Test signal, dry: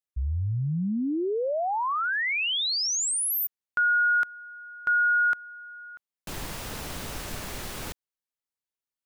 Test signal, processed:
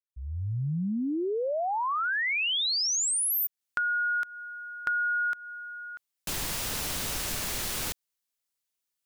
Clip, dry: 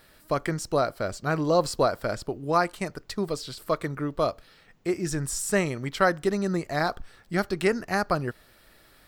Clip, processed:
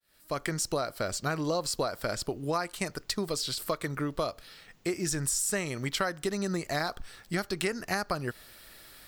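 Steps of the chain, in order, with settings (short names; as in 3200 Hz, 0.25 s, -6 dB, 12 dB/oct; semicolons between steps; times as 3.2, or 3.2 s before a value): opening faded in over 0.69 s; high shelf 2300 Hz +9.5 dB; compressor 6:1, threshold -27 dBFS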